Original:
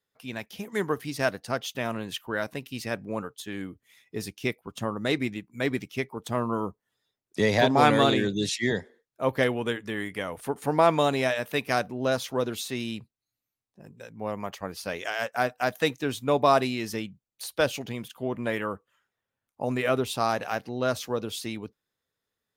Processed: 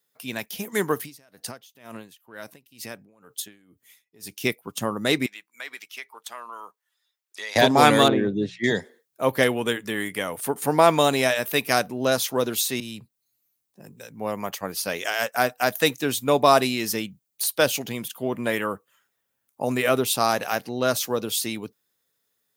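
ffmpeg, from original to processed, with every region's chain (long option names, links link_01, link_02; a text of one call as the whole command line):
ffmpeg -i in.wav -filter_complex "[0:a]asettb=1/sr,asplit=3[link_01][link_02][link_03];[link_01]atrim=end=1.004[link_04];[link_02]atrim=start=1:end=4.36,asetpts=PTS-STARTPTS,afade=type=in:duration=0.004:curve=qsin,afade=type=out:start_time=3.356:duration=0.004:curve=qsin,acompressor=threshold=-35dB:ratio=8:attack=3.2:release=140:knee=1:detection=peak,aeval=exprs='val(0)*pow(10,-23*(0.5-0.5*cos(2*PI*2.1*n/s))/20)':channel_layout=same[link_05];[link_03]atrim=start=4.356[link_06];[link_04][link_05]acrossfade=duration=0.004:curve1=hsin:curve2=qsin[link_07];[link_07][link_06]acrossfade=duration=0.004:curve1=qsin:curve2=hsin,asettb=1/sr,asplit=3[link_08][link_09][link_10];[link_08]atrim=end=5.264[link_11];[link_09]atrim=start=5.26:end=7.56,asetpts=PTS-STARTPTS,afade=type=in:duration=0.004:curve=qsin,afade=type=out:start_time=2.296:duration=0.004:curve=qsin,highpass=1200,highshelf=frequency=5900:gain=-11,acompressor=threshold=-41dB:ratio=2:attack=3.2:release=140:knee=1:detection=peak[link_12];[link_10]atrim=start=7.556[link_13];[link_11][link_12]acrossfade=duration=0.004:curve1=hsin:curve2=qsin[link_14];[link_14][link_13]acrossfade=duration=0.004:curve1=qsin:curve2=hsin,asettb=1/sr,asplit=3[link_15][link_16][link_17];[link_15]atrim=end=8.084[link_18];[link_16]atrim=start=8.08:end=8.64,asetpts=PTS-STARTPTS,afade=type=in:duration=0.004:curve=qsin,afade=type=out:start_time=0.556:duration=0.004:curve=qsin,lowpass=1200,bandreject=frequency=60:width_type=h:width=6,bandreject=frequency=120:width_type=h:width=6,bandreject=frequency=180:width_type=h:width=6[link_19];[link_17]atrim=start=8.636[link_20];[link_18][link_19]acrossfade=duration=0.004:curve1=hsin:curve2=qsin[link_21];[link_21][link_20]acrossfade=duration=0.004:curve1=qsin:curve2=hsin,asettb=1/sr,asplit=3[link_22][link_23][link_24];[link_22]atrim=end=12.804[link_25];[link_23]atrim=start=12.8:end=14.13,asetpts=PTS-STARTPTS,afade=type=in:duration=0.004:curve=qsin,afade=type=out:start_time=1.326:duration=0.004:curve=qsin,acrossover=split=130|3000[link_26][link_27][link_28];[link_27]acompressor=threshold=-43dB:ratio=2.5:attack=3.2:release=140:knee=2.83:detection=peak[link_29];[link_26][link_29][link_28]amix=inputs=3:normalize=0,adynamicequalizer=threshold=0.00224:dfrequency=2100:dqfactor=0.7:tfrequency=2100:tqfactor=0.7:attack=5:release=100:ratio=0.375:range=2.5:mode=cutabove:tftype=highshelf[link_30];[link_24]atrim=start=14.126[link_31];[link_25][link_30]acrossfade=duration=0.004:curve1=hsin:curve2=qsin[link_32];[link_32][link_31]acrossfade=duration=0.004:curve1=qsin:curve2=hsin,highpass=120,aemphasis=mode=production:type=50kf,volume=3.5dB" out.wav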